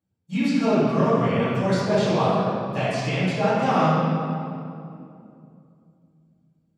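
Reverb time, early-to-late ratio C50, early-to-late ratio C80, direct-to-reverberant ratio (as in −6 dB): 2.6 s, −4.0 dB, −1.0 dB, −15.5 dB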